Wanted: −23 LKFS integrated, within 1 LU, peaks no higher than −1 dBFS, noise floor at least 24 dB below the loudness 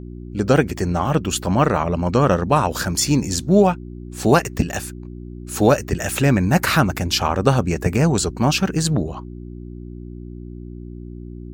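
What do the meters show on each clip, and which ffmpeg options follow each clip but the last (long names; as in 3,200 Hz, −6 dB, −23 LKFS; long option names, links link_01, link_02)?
mains hum 60 Hz; hum harmonics up to 360 Hz; level of the hum −32 dBFS; integrated loudness −19.0 LKFS; sample peak −1.5 dBFS; target loudness −23.0 LKFS
→ -af "bandreject=frequency=60:width_type=h:width=4,bandreject=frequency=120:width_type=h:width=4,bandreject=frequency=180:width_type=h:width=4,bandreject=frequency=240:width_type=h:width=4,bandreject=frequency=300:width_type=h:width=4,bandreject=frequency=360:width_type=h:width=4"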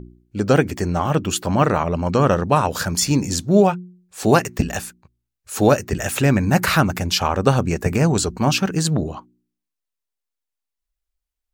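mains hum none found; integrated loudness −19.0 LKFS; sample peak −1.0 dBFS; target loudness −23.0 LKFS
→ -af "volume=-4dB"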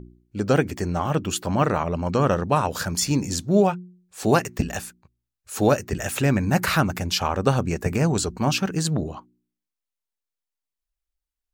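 integrated loudness −23.0 LKFS; sample peak −5.0 dBFS; background noise floor −87 dBFS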